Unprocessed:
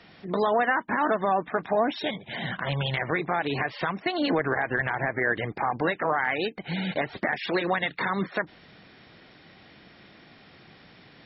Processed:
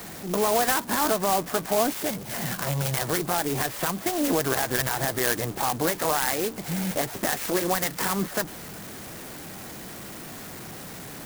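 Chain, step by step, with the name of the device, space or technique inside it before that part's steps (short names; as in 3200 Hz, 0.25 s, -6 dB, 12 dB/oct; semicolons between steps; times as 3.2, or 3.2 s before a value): early CD player with a faulty converter (zero-crossing step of -35 dBFS; clock jitter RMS 0.1 ms)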